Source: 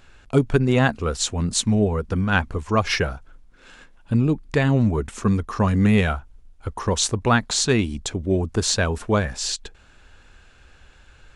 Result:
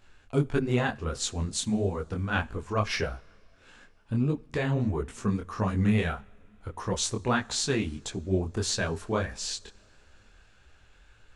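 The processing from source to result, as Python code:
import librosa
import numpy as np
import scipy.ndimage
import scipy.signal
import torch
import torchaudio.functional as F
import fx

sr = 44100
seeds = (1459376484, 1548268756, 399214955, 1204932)

y = fx.rev_double_slope(x, sr, seeds[0], early_s=0.52, late_s=4.1, knee_db=-18, drr_db=19.0)
y = fx.detune_double(y, sr, cents=55)
y = y * 10.0 ** (-4.0 / 20.0)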